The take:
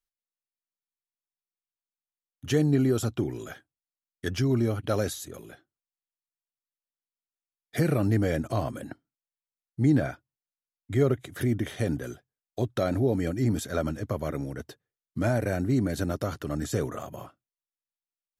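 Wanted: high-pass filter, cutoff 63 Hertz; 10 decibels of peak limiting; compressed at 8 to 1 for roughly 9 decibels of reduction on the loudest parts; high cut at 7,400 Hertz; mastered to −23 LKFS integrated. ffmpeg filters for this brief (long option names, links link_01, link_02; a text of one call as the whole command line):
ffmpeg -i in.wav -af "highpass=63,lowpass=7400,acompressor=threshold=-27dB:ratio=8,volume=15dB,alimiter=limit=-12.5dB:level=0:latency=1" out.wav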